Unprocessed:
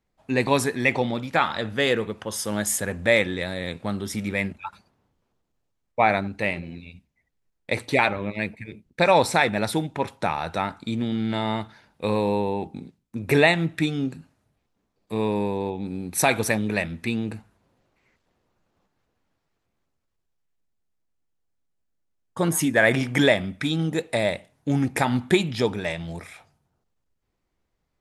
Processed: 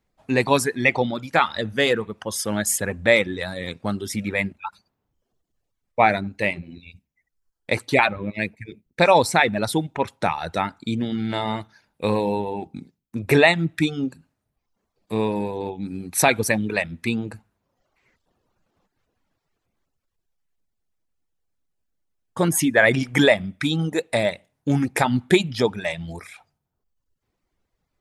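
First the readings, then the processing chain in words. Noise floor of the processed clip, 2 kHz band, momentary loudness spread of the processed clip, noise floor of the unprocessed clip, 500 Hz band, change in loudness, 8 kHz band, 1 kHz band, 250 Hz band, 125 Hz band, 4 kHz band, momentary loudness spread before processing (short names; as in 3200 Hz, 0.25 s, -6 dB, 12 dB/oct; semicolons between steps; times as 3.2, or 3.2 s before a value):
-79 dBFS, +2.5 dB, 13 LU, -76 dBFS, +2.0 dB, +2.0 dB, +2.5 dB, +2.5 dB, +1.5 dB, +1.0 dB, +2.0 dB, 13 LU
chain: reverb removal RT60 0.87 s; gain +3 dB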